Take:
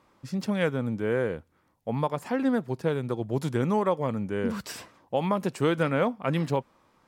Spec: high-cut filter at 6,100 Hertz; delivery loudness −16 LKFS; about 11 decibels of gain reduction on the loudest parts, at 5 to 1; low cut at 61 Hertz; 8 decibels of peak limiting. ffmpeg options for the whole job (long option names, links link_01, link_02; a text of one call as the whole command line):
ffmpeg -i in.wav -af "highpass=61,lowpass=6100,acompressor=threshold=-33dB:ratio=5,volume=23dB,alimiter=limit=-4.5dB:level=0:latency=1" out.wav